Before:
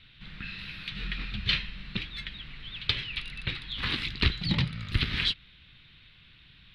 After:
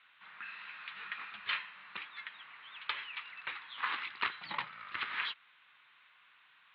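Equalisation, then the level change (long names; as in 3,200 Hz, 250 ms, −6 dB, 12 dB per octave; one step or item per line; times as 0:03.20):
four-pole ladder band-pass 1,200 Hz, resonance 45%
high-frequency loss of the air 210 metres
+12.5 dB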